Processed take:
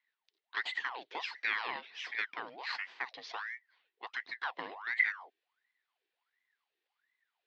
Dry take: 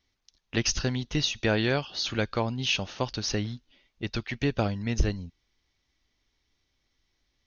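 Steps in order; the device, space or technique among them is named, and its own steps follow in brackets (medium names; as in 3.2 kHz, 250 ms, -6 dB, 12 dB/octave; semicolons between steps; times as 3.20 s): voice changer toy (ring modulator with a swept carrier 1.2 kHz, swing 70%, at 1.4 Hz; cabinet simulation 580–3900 Hz, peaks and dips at 590 Hz -10 dB, 1.3 kHz -6 dB, 1.9 kHz +5 dB); trim -6.5 dB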